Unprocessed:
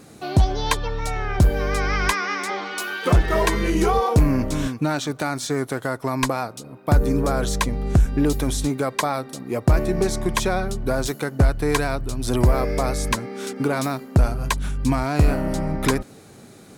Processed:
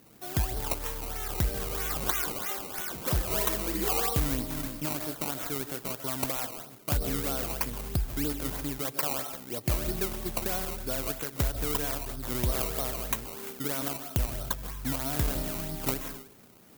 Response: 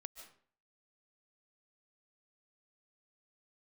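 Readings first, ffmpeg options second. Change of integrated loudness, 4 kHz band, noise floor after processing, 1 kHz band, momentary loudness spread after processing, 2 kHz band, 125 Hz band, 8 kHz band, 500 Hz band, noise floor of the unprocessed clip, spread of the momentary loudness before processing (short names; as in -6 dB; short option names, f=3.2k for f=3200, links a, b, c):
-8.0 dB, -6.5 dB, -51 dBFS, -12.0 dB, 6 LU, -12.0 dB, -12.5 dB, -3.5 dB, -12.0 dB, -45 dBFS, 7 LU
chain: -filter_complex "[1:a]atrim=start_sample=2205[a];[0:a][a]afir=irnorm=-1:irlink=0,acrusher=samples=18:mix=1:aa=0.000001:lfo=1:lforange=18:lforate=3.1,aemphasis=mode=production:type=50fm,volume=-6.5dB"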